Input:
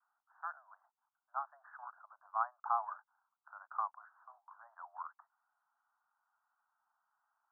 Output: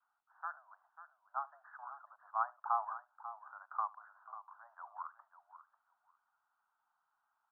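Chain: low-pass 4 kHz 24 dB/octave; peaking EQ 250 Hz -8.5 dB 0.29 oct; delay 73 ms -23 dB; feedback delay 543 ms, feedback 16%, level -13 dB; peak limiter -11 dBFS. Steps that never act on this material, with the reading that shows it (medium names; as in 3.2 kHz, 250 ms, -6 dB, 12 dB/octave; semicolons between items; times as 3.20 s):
low-pass 4 kHz: input has nothing above 1.7 kHz; peaking EQ 250 Hz: input has nothing below 570 Hz; peak limiter -11 dBFS: peak at its input -20.5 dBFS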